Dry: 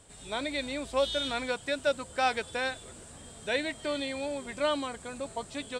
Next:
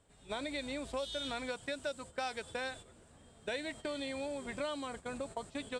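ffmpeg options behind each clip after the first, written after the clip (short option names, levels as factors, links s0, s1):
-filter_complex "[0:a]agate=range=0.251:threshold=0.00794:ratio=16:detection=peak,highshelf=f=4200:g=-10,acrossover=split=4600[s0][s1];[s0]acompressor=threshold=0.0112:ratio=5[s2];[s2][s1]amix=inputs=2:normalize=0,volume=1.26"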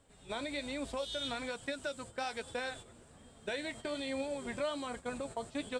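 -filter_complex "[0:a]asplit=2[s0][s1];[s1]alimiter=level_in=3.16:limit=0.0631:level=0:latency=1:release=97,volume=0.316,volume=0.944[s2];[s0][s2]amix=inputs=2:normalize=0,flanger=delay=3.6:depth=5.2:regen=68:speed=1.2:shape=sinusoidal,volume=1.12"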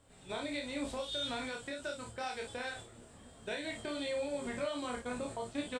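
-filter_complex "[0:a]alimiter=level_in=2.11:limit=0.0631:level=0:latency=1:release=291,volume=0.473,asplit=2[s0][s1];[s1]adelay=17,volume=0.299[s2];[s0][s2]amix=inputs=2:normalize=0,asplit=2[s3][s4];[s4]aecho=0:1:28|54:0.631|0.447[s5];[s3][s5]amix=inputs=2:normalize=0"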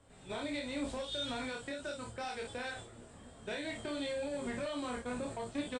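-filter_complex "[0:a]acrossover=split=300|2600[s0][s1][s2];[s1]asoftclip=type=tanh:threshold=0.0126[s3];[s2]flanger=delay=16:depth=7.9:speed=0.36[s4];[s0][s3][s4]amix=inputs=3:normalize=0,aresample=22050,aresample=44100,volume=1.26"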